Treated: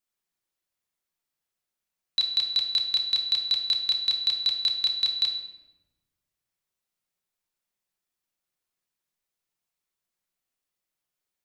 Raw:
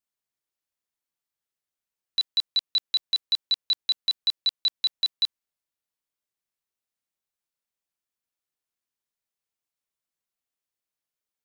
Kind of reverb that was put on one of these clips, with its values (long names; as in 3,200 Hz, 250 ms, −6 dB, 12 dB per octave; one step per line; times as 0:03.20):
rectangular room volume 480 cubic metres, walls mixed, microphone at 0.99 metres
level +1.5 dB